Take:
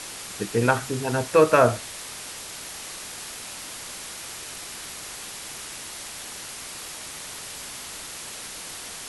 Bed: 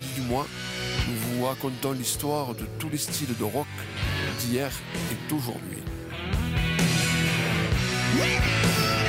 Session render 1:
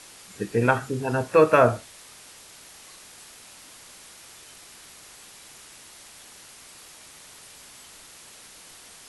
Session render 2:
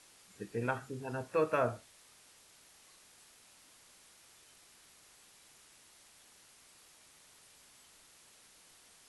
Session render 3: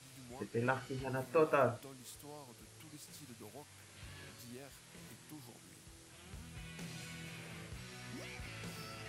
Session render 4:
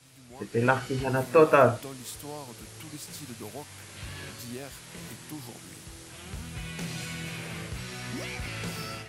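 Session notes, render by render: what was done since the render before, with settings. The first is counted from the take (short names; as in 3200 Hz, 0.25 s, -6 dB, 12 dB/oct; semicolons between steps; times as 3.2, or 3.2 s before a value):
noise print and reduce 10 dB
gain -14 dB
add bed -25 dB
AGC gain up to 12 dB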